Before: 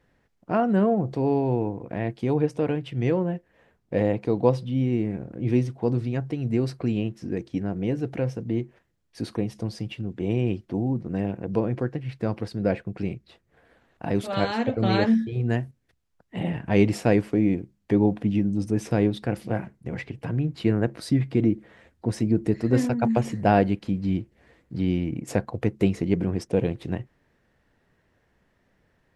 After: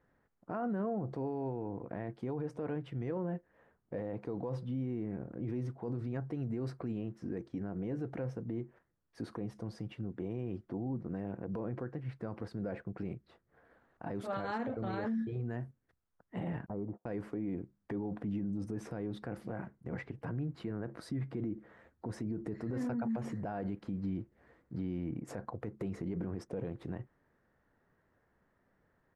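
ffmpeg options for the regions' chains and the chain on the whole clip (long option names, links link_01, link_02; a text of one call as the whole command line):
ffmpeg -i in.wav -filter_complex "[0:a]asettb=1/sr,asplit=3[link_01][link_02][link_03];[link_01]atrim=end=16.664[link_04];[link_02]atrim=start=16.66:end=17.06,asetpts=PTS-STARTPTS,afade=type=in:duration=0.004:curve=qsin,afade=type=out:start_time=0.396:duration=0.004:curve=qsin,agate=range=-36dB:threshold=-31dB:ratio=16:release=100:detection=peak,lowpass=frequency=1000:width=0.5412,lowpass=frequency=1000:width=1.3066,acompressor=threshold=-28dB:ratio=5:attack=3.2:release=140:knee=1:detection=peak[link_05];[link_03]atrim=start=17.056[link_06];[link_04][link_05]acrossfade=duration=0.004:curve1=hsin:curve2=qsin[link_07];[link_07][link_06]acrossfade=duration=0.004:curve1=qsin:curve2=hsin,firequalizer=gain_entry='entry(680,0);entry(1300,3);entry(2600,-10)':delay=0.05:min_phase=1,alimiter=limit=-22.5dB:level=0:latency=1:release=38,lowshelf=frequency=130:gain=-4.5,volume=-5.5dB" out.wav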